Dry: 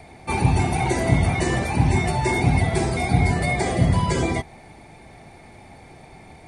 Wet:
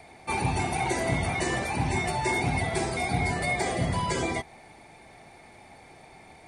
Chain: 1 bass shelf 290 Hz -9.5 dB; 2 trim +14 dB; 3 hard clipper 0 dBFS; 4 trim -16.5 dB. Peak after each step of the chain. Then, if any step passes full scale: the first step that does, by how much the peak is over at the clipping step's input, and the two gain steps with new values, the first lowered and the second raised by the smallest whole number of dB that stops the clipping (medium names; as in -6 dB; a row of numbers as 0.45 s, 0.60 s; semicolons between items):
-10.5 dBFS, +3.5 dBFS, 0.0 dBFS, -16.5 dBFS; step 2, 3.5 dB; step 2 +10 dB, step 4 -12.5 dB